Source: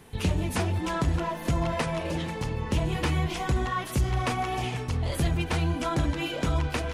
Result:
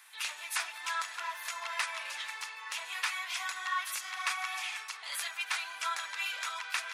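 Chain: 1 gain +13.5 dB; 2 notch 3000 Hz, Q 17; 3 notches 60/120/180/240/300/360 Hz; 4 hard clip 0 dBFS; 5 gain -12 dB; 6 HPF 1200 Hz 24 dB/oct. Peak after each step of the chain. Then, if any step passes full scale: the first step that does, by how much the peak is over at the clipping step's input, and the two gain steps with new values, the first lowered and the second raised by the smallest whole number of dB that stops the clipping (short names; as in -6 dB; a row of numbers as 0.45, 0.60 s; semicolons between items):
-0.5, -0.5, -1.5, -1.5, -13.5, -17.5 dBFS; no overload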